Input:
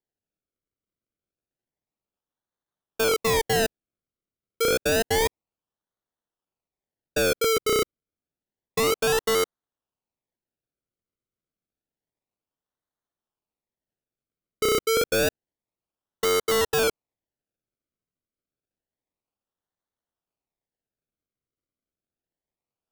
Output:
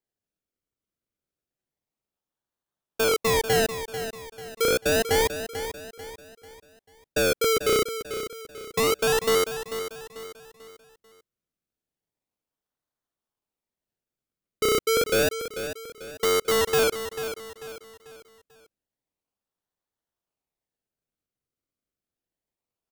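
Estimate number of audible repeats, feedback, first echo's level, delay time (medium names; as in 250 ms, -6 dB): 4, 40%, -10.5 dB, 442 ms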